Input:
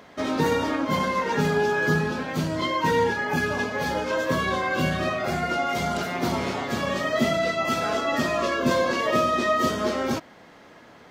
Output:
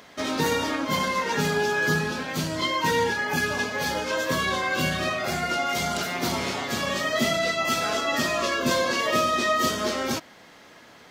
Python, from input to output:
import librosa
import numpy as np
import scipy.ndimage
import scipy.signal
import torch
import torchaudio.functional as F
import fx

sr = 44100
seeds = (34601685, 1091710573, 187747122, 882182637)

y = fx.high_shelf(x, sr, hz=2200.0, db=10.5)
y = y * 10.0 ** (-3.0 / 20.0)